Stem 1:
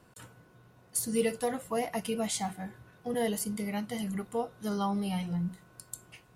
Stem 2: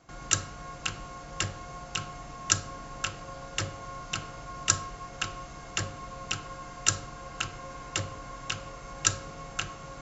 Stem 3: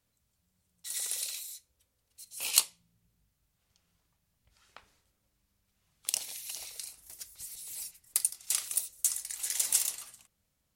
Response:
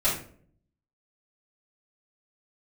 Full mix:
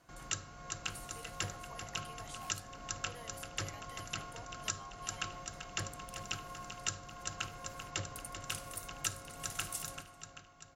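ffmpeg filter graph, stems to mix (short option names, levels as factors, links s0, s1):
-filter_complex "[0:a]highpass=880,acompressor=threshold=0.00562:ratio=6,volume=0.501[s0];[1:a]volume=0.422,asplit=2[s1][s2];[s2]volume=0.335[s3];[2:a]volume=0.188,afade=t=in:st=8.08:d=0.58:silence=0.375837[s4];[s3]aecho=0:1:389|778|1167|1556|1945|2334|2723|3112|3501:1|0.59|0.348|0.205|0.121|0.0715|0.0422|0.0249|0.0147[s5];[s0][s1][s4][s5]amix=inputs=4:normalize=0,alimiter=limit=0.141:level=0:latency=1:release=353"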